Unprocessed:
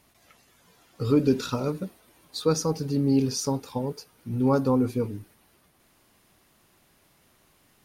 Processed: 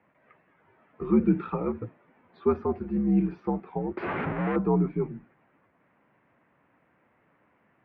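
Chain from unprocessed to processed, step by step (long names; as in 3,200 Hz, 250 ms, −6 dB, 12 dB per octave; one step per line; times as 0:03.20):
0:03.97–0:04.56: sign of each sample alone
single-sideband voice off tune −76 Hz 210–2,300 Hz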